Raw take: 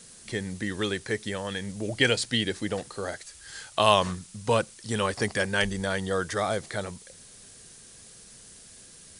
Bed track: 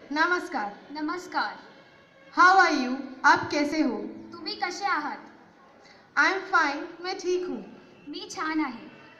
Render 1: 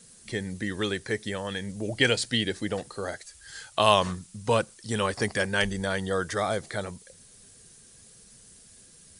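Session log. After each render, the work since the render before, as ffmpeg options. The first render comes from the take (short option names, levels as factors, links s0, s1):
-af "afftdn=nr=6:nf=-50"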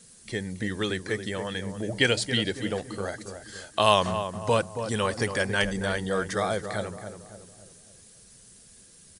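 -filter_complex "[0:a]asplit=2[s0][s1];[s1]adelay=277,lowpass=f=1300:p=1,volume=0.398,asplit=2[s2][s3];[s3]adelay=277,lowpass=f=1300:p=1,volume=0.47,asplit=2[s4][s5];[s5]adelay=277,lowpass=f=1300:p=1,volume=0.47,asplit=2[s6][s7];[s7]adelay=277,lowpass=f=1300:p=1,volume=0.47,asplit=2[s8][s9];[s9]adelay=277,lowpass=f=1300:p=1,volume=0.47[s10];[s0][s2][s4][s6][s8][s10]amix=inputs=6:normalize=0"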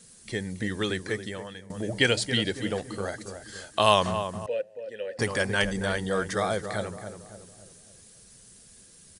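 -filter_complex "[0:a]asettb=1/sr,asplit=3[s0][s1][s2];[s0]atrim=end=4.464[s3];[s1]atrim=start=4.46:end=5.19,asetpts=PTS-STARTPTS,afade=t=in:d=0.004:c=qsin,afade=t=out:st=0.726:d=0.004:c=qsin,asplit=3[s4][s5][s6];[s4]bandpass=f=530:t=q:w=8,volume=1[s7];[s5]bandpass=f=1840:t=q:w=8,volume=0.501[s8];[s6]bandpass=f=2480:t=q:w=8,volume=0.355[s9];[s7][s8][s9]amix=inputs=3:normalize=0[s10];[s2]atrim=start=5.186[s11];[s3][s10]acrossfade=d=0.004:c1=hsin:c2=qsin[s12];[s12][s11]acrossfade=d=0.004:c1=qsin:c2=hsin,asplit=2[s13][s14];[s13]atrim=end=1.7,asetpts=PTS-STARTPTS,afade=t=out:st=1.05:d=0.65:silence=0.125893[s15];[s14]atrim=start=1.7,asetpts=PTS-STARTPTS,afade=t=in:d=0.004:c=hsin:silence=0.125893[s16];[s15][s16]concat=n=2:v=0:a=1"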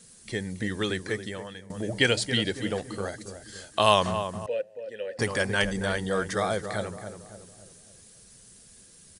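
-filter_complex "[0:a]asettb=1/sr,asplit=3[s0][s1][s2];[s0]atrim=end=3.084[s3];[s1]atrim=start=3.08:end=3.72,asetpts=PTS-STARTPTS,afade=t=in:d=0.004:c=qsin,afade=t=out:st=0.636:d=0.004:c=qsin,equalizer=f=1100:t=o:w=1.9:g=-5[s4];[s2]atrim=start=3.716[s5];[s3][s4]acrossfade=d=0.004:c1=hsin:c2=qsin[s6];[s6][s5]acrossfade=d=0.004:c1=qsin:c2=hsin"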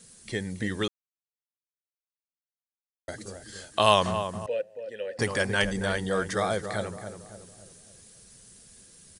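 -filter_complex "[0:a]asplit=3[s0][s1][s2];[s0]atrim=end=0.88,asetpts=PTS-STARTPTS,afade=t=out:st=0.876:d=0.004:c=hsin[s3];[s1]atrim=start=0.88:end=3.08,asetpts=PTS-STARTPTS,volume=0[s4];[s2]atrim=start=3.08,asetpts=PTS-STARTPTS,afade=t=in:d=0.004:c=hsin[s5];[s3][s4][s5]concat=n=3:v=0:a=1"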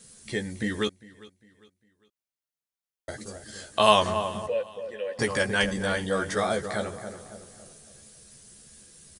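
-filter_complex "[0:a]asplit=2[s0][s1];[s1]adelay=14,volume=0.562[s2];[s0][s2]amix=inputs=2:normalize=0,aecho=1:1:402|804|1206:0.0891|0.033|0.0122"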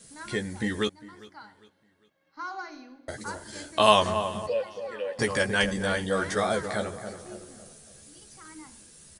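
-filter_complex "[1:a]volume=0.106[s0];[0:a][s0]amix=inputs=2:normalize=0"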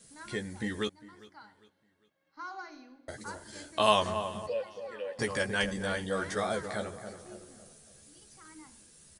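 -af "volume=0.531"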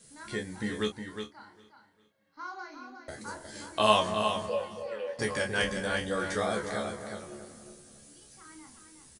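-filter_complex "[0:a]asplit=2[s0][s1];[s1]adelay=28,volume=0.531[s2];[s0][s2]amix=inputs=2:normalize=0,aecho=1:1:361:0.422"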